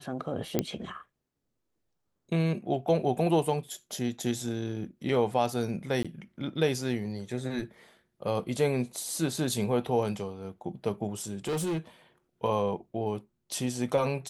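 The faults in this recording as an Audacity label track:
0.590000	0.590000	pop -11 dBFS
6.030000	6.050000	dropout 16 ms
11.310000	11.790000	clipped -27 dBFS

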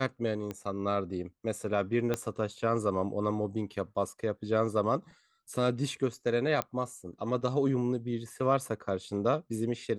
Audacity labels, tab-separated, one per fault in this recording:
0.510000	0.510000	pop -23 dBFS
2.140000	2.140000	pop -16 dBFS
6.620000	6.620000	pop -15 dBFS

